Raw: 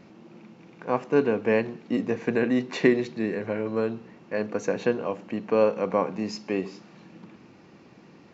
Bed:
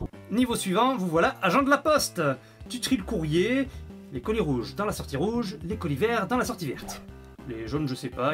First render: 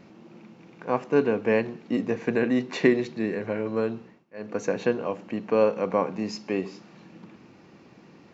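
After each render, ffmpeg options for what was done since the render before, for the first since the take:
-filter_complex "[0:a]asplit=3[s0][s1][s2];[s0]atrim=end=4.25,asetpts=PTS-STARTPTS,afade=t=out:st=4:d=0.25:silence=0.1[s3];[s1]atrim=start=4.25:end=4.33,asetpts=PTS-STARTPTS,volume=0.1[s4];[s2]atrim=start=4.33,asetpts=PTS-STARTPTS,afade=t=in:d=0.25:silence=0.1[s5];[s3][s4][s5]concat=n=3:v=0:a=1"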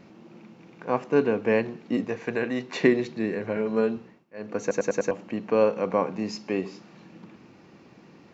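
-filter_complex "[0:a]asettb=1/sr,asplit=3[s0][s1][s2];[s0]atrim=end=2.044[s3];[s1]atrim=start=2.04:end=2.75,asetpts=PTS-STARTPTS,afade=t=in:d=0.004:c=qsin,afade=t=out:st=0.706:d=0.004:c=qsin,equalizer=f=220:w=0.68:g=-6.5[s4];[s2]atrim=start=2.746[s5];[s3][s4]acrossfade=d=0.004:c1=hsin:c2=qsin[s6];[s6][s5]acrossfade=d=0.004:c1=qsin:c2=hsin,asettb=1/sr,asplit=3[s7][s8][s9];[s7]atrim=end=3.564[s10];[s8]atrim=start=3.56:end=3.97,asetpts=PTS-STARTPTS,afade=t=in:d=0.004:c=qsin,afade=t=out:st=0.406:d=0.004:c=qsin,aecho=1:1:4.9:0.65,atrim=end_sample=18081[s11];[s9]atrim=start=3.966[s12];[s10][s11]acrossfade=d=0.004:c1=hsin:c2=qsin[s13];[s13][s12]acrossfade=d=0.004:c1=qsin:c2=hsin,asplit=6[s14][s15][s16][s17][s18][s19];[s14]atrim=end=4.712[s20];[s15]atrim=start=4.608:end=4.712[s21];[s16]atrim=start=4.608:end=4.712[s22];[s17]atrim=start=4.608:end=4.712[s23];[s18]atrim=start=4.608:end=4.712[s24];[s19]atrim=start=5.108[s25];[s20][s21]acrossfade=d=0.004:c1=hsin:c2=hsin[s26];[s26][s22]acrossfade=d=0.004:c1=hsin:c2=hsin[s27];[s27][s23]acrossfade=d=0.004:c1=hsin:c2=hsin[s28];[s28][s24]acrossfade=d=0.004:c1=hsin:c2=hsin[s29];[s29][s25]acrossfade=d=0.004:c1=hsin:c2=hsin"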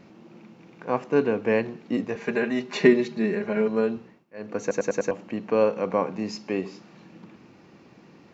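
-filter_complex "[0:a]asettb=1/sr,asplit=3[s0][s1][s2];[s0]atrim=end=2.154[s3];[s1]atrim=start=2.15:end=3.68,asetpts=PTS-STARTPTS,afade=t=in:d=0.004:c=qsin,afade=t=out:st=1.526:d=0.004:c=qsin,aecho=1:1:4.9:0.82,atrim=end_sample=67473[s4];[s2]atrim=start=3.676[s5];[s3][s4]acrossfade=d=0.004:c1=hsin:c2=qsin[s6];[s6][s5]acrossfade=d=0.004:c1=qsin:c2=hsin"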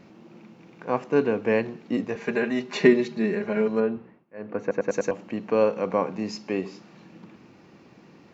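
-filter_complex "[0:a]asettb=1/sr,asplit=3[s0][s1][s2];[s0]atrim=end=3.804[s3];[s1]atrim=start=3.8:end=4.89,asetpts=PTS-STARTPTS,afade=t=in:d=0.004:c=qsin,afade=t=out:st=1.086:d=0.004:c=qsin,lowpass=2200[s4];[s2]atrim=start=4.886[s5];[s3][s4]acrossfade=d=0.004:c1=hsin:c2=qsin[s6];[s6][s5]acrossfade=d=0.004:c1=qsin:c2=hsin"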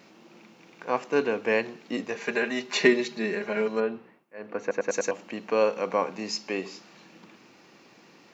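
-af "highpass=f=430:p=1,highshelf=f=2800:g=8.5"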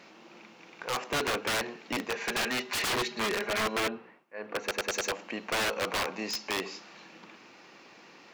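-filter_complex "[0:a]aeval=exprs='(mod(13.3*val(0)+1,2)-1)/13.3':c=same,asplit=2[s0][s1];[s1]highpass=f=720:p=1,volume=2.51,asoftclip=type=tanh:threshold=0.0794[s2];[s0][s2]amix=inputs=2:normalize=0,lowpass=f=4200:p=1,volume=0.501"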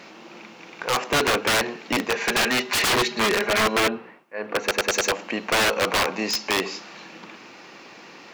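-af "volume=2.82"

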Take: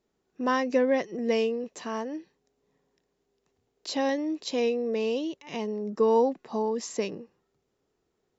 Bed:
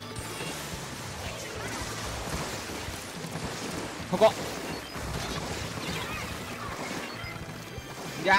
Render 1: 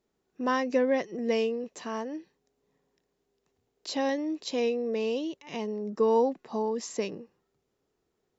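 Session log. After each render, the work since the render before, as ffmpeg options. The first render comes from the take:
-af "volume=0.841"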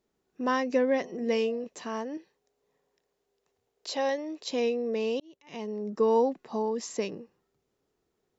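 -filter_complex "[0:a]asettb=1/sr,asplit=3[s0][s1][s2];[s0]atrim=end=0.974[s3];[s1]atrim=start=0.97:end=1.67,asetpts=PTS-STARTPTS,afade=t=in:d=0.004:c=qsin,afade=t=out:st=0.696:d=0.004:c=qsin,bandreject=f=83.71:t=h:w=4,bandreject=f=167.42:t=h:w=4,bandreject=f=251.13:t=h:w=4,bandreject=f=334.84:t=h:w=4,bandreject=f=418.55:t=h:w=4,bandreject=f=502.26:t=h:w=4,bandreject=f=585.97:t=h:w=4,bandreject=f=669.68:t=h:w=4,bandreject=f=753.39:t=h:w=4,bandreject=f=837.1:t=h:w=4,bandreject=f=920.81:t=h:w=4,bandreject=f=1004.52:t=h:w=4,bandreject=f=1088.23:t=h:w=4,bandreject=f=1171.94:t=h:w=4[s4];[s2]atrim=start=1.666[s5];[s3][s4]acrossfade=d=0.004:c1=hsin:c2=qsin[s6];[s6][s5]acrossfade=d=0.004:c1=qsin:c2=hsin,asettb=1/sr,asplit=3[s7][s8][s9];[s7]atrim=end=2.174[s10];[s8]atrim=start=2.17:end=4.5,asetpts=PTS-STARTPTS,afade=t=in:d=0.004:c=qsin,afade=t=out:st=2.326:d=0.004:c=qsin,lowshelf=f=360:t=q:w=1.5:g=-6[s11];[s9]atrim=start=4.496[s12];[s10][s11]acrossfade=d=0.004:c1=hsin:c2=qsin[s13];[s13][s12]acrossfade=d=0.004:c1=qsin:c2=hsin,asplit=2[s14][s15];[s14]atrim=end=5.2,asetpts=PTS-STARTPTS,afade=t=out:st=5.196:d=0.004:c=hsin[s16];[s15]atrim=start=5.2,asetpts=PTS-STARTPTS,afade=t=in:d=0.61[s17];[s16][s17]concat=n=2:v=0:a=1"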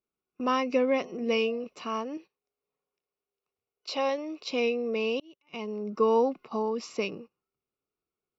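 -af "agate=range=0.178:threshold=0.00501:ratio=16:detection=peak,superequalizer=10b=2.24:11b=0.501:12b=2.24:15b=0.316"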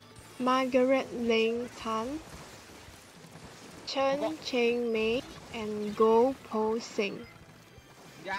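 -filter_complex "[1:a]volume=0.211[s0];[0:a][s0]amix=inputs=2:normalize=0"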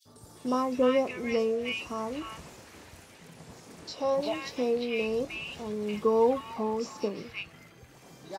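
-filter_complex "[0:a]asplit=2[s0][s1];[s1]adelay=24,volume=0.266[s2];[s0][s2]amix=inputs=2:normalize=0,acrossover=split=1300|4000[s3][s4][s5];[s3]adelay=50[s6];[s4]adelay=350[s7];[s6][s7][s5]amix=inputs=3:normalize=0"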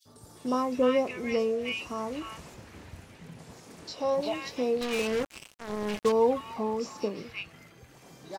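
-filter_complex "[0:a]asettb=1/sr,asplit=3[s0][s1][s2];[s0]atrim=end=2.544[s3];[s1]atrim=start=2.54:end=3.39,asetpts=PTS-STARTPTS,afade=t=in:d=0.004:c=qsin,afade=t=out:st=0.846:d=0.004:c=qsin,bass=f=250:g=8,treble=f=4000:g=-5[s4];[s2]atrim=start=3.386[s5];[s3][s4]acrossfade=d=0.004:c1=hsin:c2=qsin[s6];[s6][s5]acrossfade=d=0.004:c1=qsin:c2=hsin,asettb=1/sr,asplit=3[s7][s8][s9];[s7]atrim=end=4.814[s10];[s8]atrim=start=4.81:end=6.12,asetpts=PTS-STARTPTS,afade=t=in:d=0.004:c=qsin,afade=t=out:st=1.306:d=0.004:c=qsin,acrusher=bits=4:mix=0:aa=0.5[s11];[s9]atrim=start=6.116[s12];[s10][s11]acrossfade=d=0.004:c1=hsin:c2=qsin[s13];[s13][s12]acrossfade=d=0.004:c1=qsin:c2=hsin"

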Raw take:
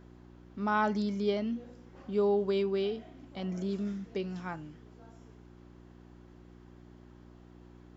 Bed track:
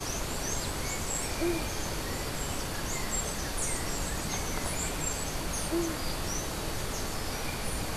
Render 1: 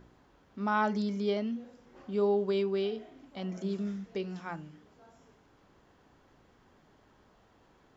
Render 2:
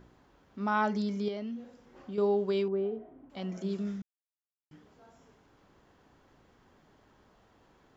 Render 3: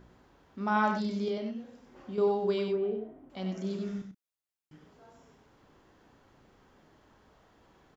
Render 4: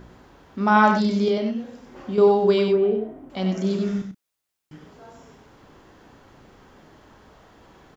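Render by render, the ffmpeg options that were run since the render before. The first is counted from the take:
-af "bandreject=f=60:t=h:w=4,bandreject=f=120:t=h:w=4,bandreject=f=180:t=h:w=4,bandreject=f=240:t=h:w=4,bandreject=f=300:t=h:w=4,bandreject=f=360:t=h:w=4,bandreject=f=420:t=h:w=4,bandreject=f=480:t=h:w=4"
-filter_complex "[0:a]asettb=1/sr,asplit=3[s0][s1][s2];[s0]atrim=end=1.284[s3];[s1]atrim=start=1.28:end=2.18,asetpts=PTS-STARTPTS,afade=t=in:d=0.004:c=qsin,afade=t=out:st=0.896:d=0.004:c=qsin,acompressor=threshold=0.0158:ratio=2.5:attack=3.2:release=140:knee=1:detection=peak[s4];[s2]atrim=start=2.176[s5];[s3][s4]acrossfade=d=0.004:c1=hsin:c2=qsin[s6];[s6][s5]acrossfade=d=0.004:c1=qsin:c2=hsin,asettb=1/sr,asplit=3[s7][s8][s9];[s7]atrim=end=2.684[s10];[s8]atrim=start=2.68:end=3.3,asetpts=PTS-STARTPTS,afade=t=in:d=0.004:c=qsin,afade=t=out:st=0.616:d=0.004:c=qsin,lowpass=1000[s11];[s9]atrim=start=3.296[s12];[s10][s11]acrossfade=d=0.004:c1=hsin:c2=qsin[s13];[s13][s12]acrossfade=d=0.004:c1=qsin:c2=hsin,asplit=3[s14][s15][s16];[s14]atrim=end=4.02,asetpts=PTS-STARTPTS,afade=t=out:st=4.016:d=0.004:c=hsin[s17];[s15]atrim=start=4.02:end=4.71,asetpts=PTS-STARTPTS,volume=0[s18];[s16]atrim=start=4.71,asetpts=PTS-STARTPTS,afade=t=in:d=0.004:c=hsin[s19];[s17][s18][s19]concat=n=3:v=0:a=1"
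-filter_complex "[0:a]asplit=2[s0][s1];[s1]adelay=32,volume=0.299[s2];[s0][s2]amix=inputs=2:normalize=0,aecho=1:1:95:0.531"
-af "volume=3.55"

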